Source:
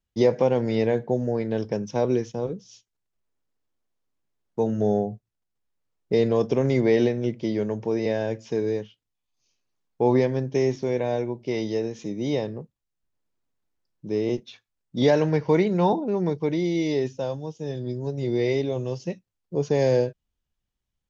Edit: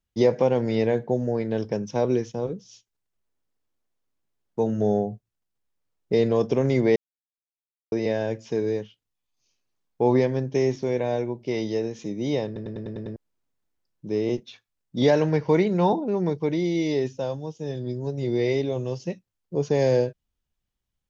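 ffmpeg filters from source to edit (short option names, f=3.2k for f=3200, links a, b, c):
-filter_complex "[0:a]asplit=10[a][b][c][d][e][f][g][h][i][j];[a]atrim=end=6.96,asetpts=PTS-STARTPTS,afade=t=out:st=6.956:d=0.004:c=hsin[k];[b]atrim=start=6.96:end=7.92,asetpts=PTS-STARTPTS,volume=0[l];[c]atrim=start=7.92:end=12.562,asetpts=PTS-STARTPTS,afade=t=in:d=0.004:c=hsin[m];[d]atrim=start=12.458:end=12.562[n];[e]atrim=start=12.458:end=12.562[o];[f]atrim=start=12.458:end=12.562[p];[g]atrim=start=12.458:end=12.562[q];[h]atrim=start=12.458:end=12.562[r];[i]atrim=start=12.458:end=12.562[s];[j]atrim=start=13.158[t];[k][l][m]concat=n=3:v=0:a=1[u];[u][n]acrossfade=d=0.004:c1=hsin:c2=hsin[v];[v][o]acrossfade=d=0.004:c1=hsin:c2=hsin[w];[w][p]acrossfade=d=0.004:c1=hsin:c2=hsin[x];[x][q]acrossfade=d=0.004:c1=hsin:c2=hsin[y];[y][r]acrossfade=d=0.004:c1=hsin:c2=hsin[z];[z][s]acrossfade=d=0.004:c1=hsin:c2=hsin[aa];[aa][t]acrossfade=d=0.004:c1=hsin:c2=hsin"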